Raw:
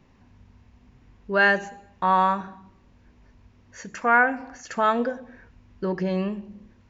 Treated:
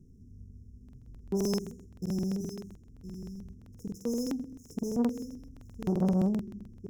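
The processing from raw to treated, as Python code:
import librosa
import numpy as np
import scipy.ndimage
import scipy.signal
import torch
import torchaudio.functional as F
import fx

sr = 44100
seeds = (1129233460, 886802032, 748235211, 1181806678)

y = scipy.signal.medfilt(x, 15)
y = fx.brickwall_bandstop(y, sr, low_hz=490.0, high_hz=5100.0)
y = fx.bass_treble(y, sr, bass_db=8, treble_db=5)
y = y + 10.0 ** (-12.0 / 20.0) * np.pad(y, (int(1015 * sr / 1000.0), 0))[:len(y)]
y = fx.buffer_crackle(y, sr, first_s=0.84, period_s=0.13, block=2048, kind='repeat')
y = fx.transformer_sat(y, sr, knee_hz=340.0)
y = y * 10.0 ** (-3.5 / 20.0)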